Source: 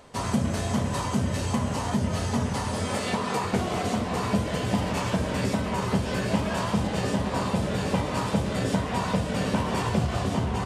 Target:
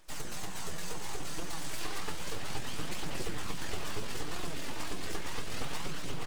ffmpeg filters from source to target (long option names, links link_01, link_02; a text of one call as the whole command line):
ffmpeg -i in.wav -filter_complex "[0:a]tiltshelf=frequency=1100:gain=-5.5,aecho=1:1:3.3:0.96,asubboost=boost=11:cutoff=150,acrossover=split=220[link_01][link_02];[link_01]acompressor=threshold=-27dB:ratio=16[link_03];[link_03][link_02]amix=inputs=2:normalize=0,atempo=1.7,aeval=exprs='abs(val(0))':channel_layout=same,flanger=delay=5.3:depth=7.2:regen=54:speed=0.68:shape=triangular,acrusher=bits=8:mode=log:mix=0:aa=0.000001,aphaser=in_gain=1:out_gain=1:delay=3.5:decay=0.25:speed=0.32:type=triangular,asplit=2[link_04][link_05];[link_05]aecho=0:1:562:0.299[link_06];[link_04][link_06]amix=inputs=2:normalize=0,volume=-6.5dB" out.wav